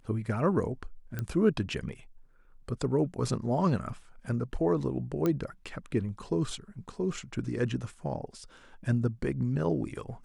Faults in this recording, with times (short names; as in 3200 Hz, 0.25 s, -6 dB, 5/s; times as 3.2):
1.19 pop -20 dBFS
5.26 pop -16 dBFS